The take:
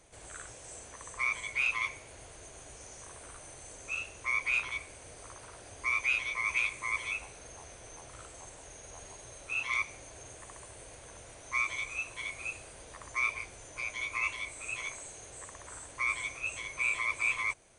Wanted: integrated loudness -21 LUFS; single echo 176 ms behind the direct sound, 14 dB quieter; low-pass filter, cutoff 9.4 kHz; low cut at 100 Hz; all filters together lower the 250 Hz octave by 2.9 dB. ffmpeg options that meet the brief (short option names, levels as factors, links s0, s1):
-af "highpass=100,lowpass=9400,equalizer=f=250:t=o:g=-4,aecho=1:1:176:0.2,volume=3.76"